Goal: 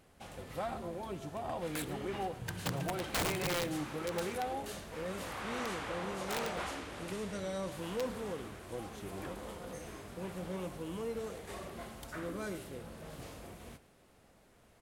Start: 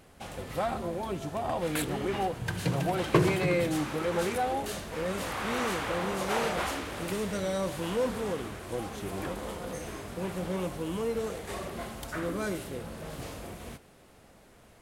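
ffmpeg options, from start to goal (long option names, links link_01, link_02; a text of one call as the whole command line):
ffmpeg -i in.wav -filter_complex "[0:a]asettb=1/sr,asplit=3[link_01][link_02][link_03];[link_01]atrim=end=5.404[link_04];[link_02]atrim=start=5.4:end=7.72,asetpts=PTS-STARTPTS,afade=type=in:duration=0.004:curve=qsin,afade=type=out:start_time=2.316:duration=0.004:curve=qsin,lowpass=11000[link_05];[link_03]atrim=start=7.716[link_06];[link_04][link_05]acrossfade=duration=0.004:curve1=hsin:curve2=qsin[link_07];[link_07][link_06]acrossfade=duration=0.004:curve1=qsin:curve2=hsin,aeval=exprs='(mod(9.44*val(0)+1,2)-1)/9.44':channel_layout=same,aecho=1:1:110:0.106,volume=-7.5dB" out.wav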